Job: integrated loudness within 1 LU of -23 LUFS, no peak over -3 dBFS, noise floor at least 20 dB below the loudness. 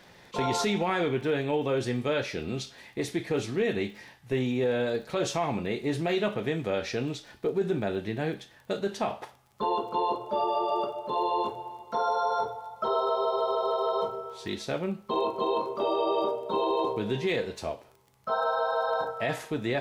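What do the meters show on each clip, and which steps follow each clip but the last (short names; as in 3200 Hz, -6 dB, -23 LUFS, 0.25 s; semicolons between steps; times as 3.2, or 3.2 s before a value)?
ticks 24/s; loudness -29.5 LUFS; peak -14.0 dBFS; loudness target -23.0 LUFS
-> de-click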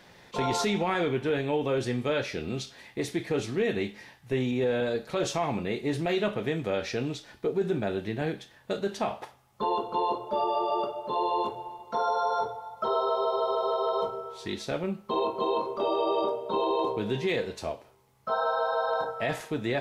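ticks 0/s; loudness -29.5 LUFS; peak -14.0 dBFS; loudness target -23.0 LUFS
-> gain +6.5 dB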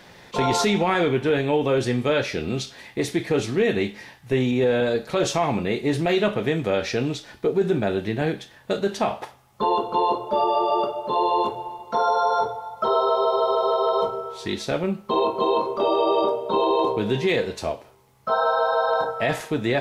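loudness -23.0 LUFS; peak -7.5 dBFS; noise floor -51 dBFS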